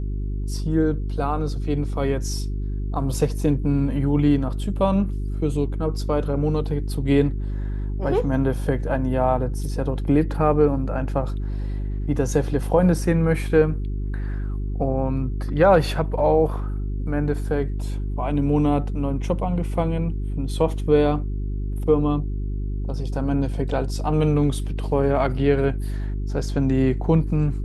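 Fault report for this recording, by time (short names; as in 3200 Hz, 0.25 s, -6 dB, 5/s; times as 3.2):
hum 50 Hz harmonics 8 -26 dBFS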